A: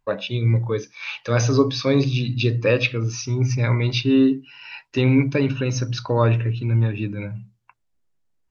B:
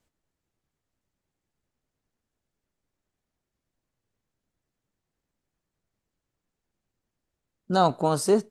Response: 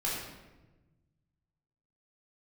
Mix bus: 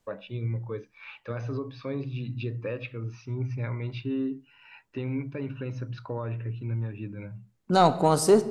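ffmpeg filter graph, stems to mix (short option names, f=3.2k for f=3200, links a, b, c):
-filter_complex "[0:a]lowpass=2.2k,alimiter=limit=-13.5dB:level=0:latency=1:release=304,volume=-9.5dB[a];[1:a]acontrast=63,volume=-5dB,asplit=2[b][c];[c]volume=-17.5dB[d];[2:a]atrim=start_sample=2205[e];[d][e]afir=irnorm=-1:irlink=0[f];[a][b][f]amix=inputs=3:normalize=0"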